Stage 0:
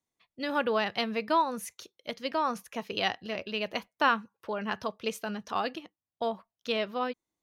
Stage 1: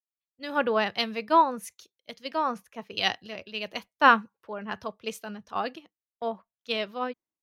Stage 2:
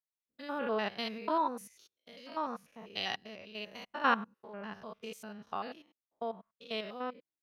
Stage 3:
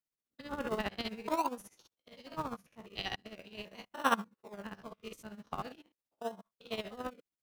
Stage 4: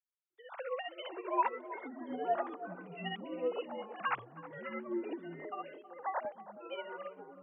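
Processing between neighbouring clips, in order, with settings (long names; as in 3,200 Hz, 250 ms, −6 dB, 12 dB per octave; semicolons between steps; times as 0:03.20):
multiband upward and downward expander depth 100%
spectrum averaged block by block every 100 ms; level −5.5 dB
in parallel at −8 dB: sample-and-hold swept by an LFO 37×, swing 100% 0.43 Hz; on the sum: amplitude tremolo 15 Hz, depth 75%
three sine waves on the formant tracks; delay with pitch and tempo change per echo 332 ms, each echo −6 semitones, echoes 3; feedback echo with a band-pass in the loop 320 ms, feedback 44%, band-pass 390 Hz, level −11 dB; level −3 dB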